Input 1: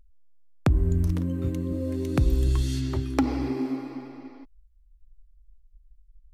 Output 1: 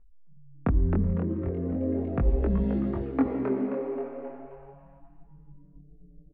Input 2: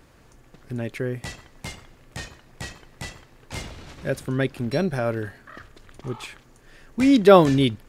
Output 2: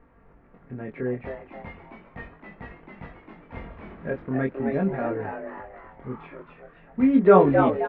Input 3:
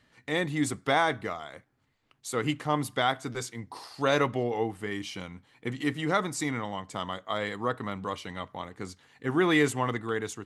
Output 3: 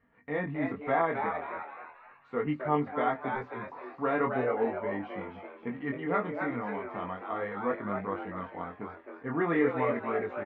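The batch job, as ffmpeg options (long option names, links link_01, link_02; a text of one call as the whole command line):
ffmpeg -i in.wav -filter_complex "[0:a]lowpass=frequency=1900:width=0.5412,lowpass=frequency=1900:width=1.3066,bandreject=frequency=1500:width=12,aecho=1:1:4.3:0.43,asplit=2[link_01][link_02];[link_02]asplit=5[link_03][link_04][link_05][link_06][link_07];[link_03]adelay=265,afreqshift=140,volume=-6dB[link_08];[link_04]adelay=530,afreqshift=280,volume=-14dB[link_09];[link_05]adelay=795,afreqshift=420,volume=-21.9dB[link_10];[link_06]adelay=1060,afreqshift=560,volume=-29.9dB[link_11];[link_07]adelay=1325,afreqshift=700,volume=-37.8dB[link_12];[link_08][link_09][link_10][link_11][link_12]amix=inputs=5:normalize=0[link_13];[link_01][link_13]amix=inputs=2:normalize=0,flanger=delay=20:depth=4.6:speed=0.38" out.wav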